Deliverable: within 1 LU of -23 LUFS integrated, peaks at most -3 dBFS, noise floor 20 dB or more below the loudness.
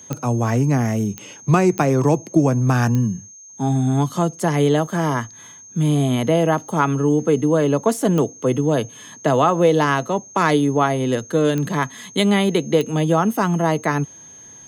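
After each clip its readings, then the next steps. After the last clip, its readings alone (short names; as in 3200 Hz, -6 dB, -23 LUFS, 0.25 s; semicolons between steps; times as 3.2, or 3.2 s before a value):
clicks 7; steady tone 6400 Hz; tone level -40 dBFS; loudness -19.0 LUFS; peak -4.5 dBFS; loudness target -23.0 LUFS
-> de-click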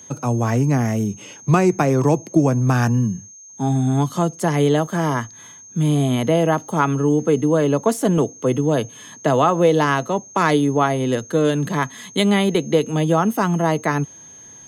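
clicks 0; steady tone 6400 Hz; tone level -40 dBFS
-> notch 6400 Hz, Q 30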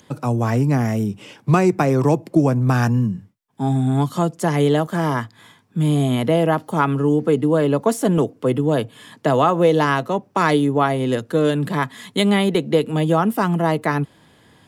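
steady tone none; loudness -19.0 LUFS; peak -4.5 dBFS; loudness target -23.0 LUFS
-> gain -4 dB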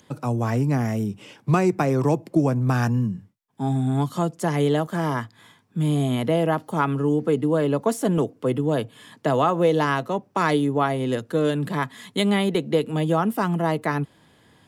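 loudness -23.0 LUFS; peak -8.5 dBFS; noise floor -58 dBFS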